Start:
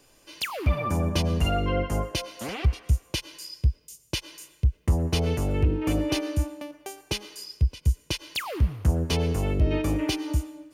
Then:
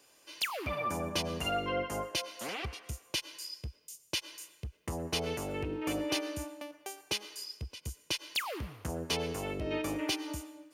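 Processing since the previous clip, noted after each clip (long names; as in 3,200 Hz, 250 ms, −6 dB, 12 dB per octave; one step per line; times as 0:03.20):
high-pass filter 520 Hz 6 dB per octave
level −2.5 dB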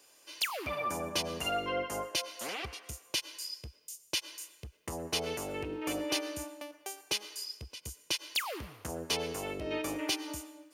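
bass and treble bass −6 dB, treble +3 dB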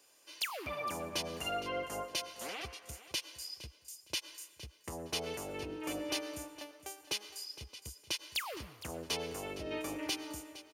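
repeating echo 462 ms, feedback 24%, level −15 dB
level −4 dB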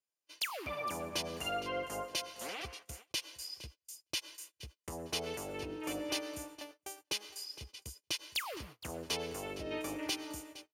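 noise gate −51 dBFS, range −31 dB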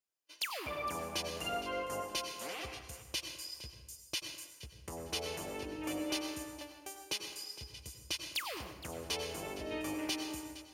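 dense smooth reverb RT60 1 s, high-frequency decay 0.65×, pre-delay 80 ms, DRR 5.5 dB
level −1 dB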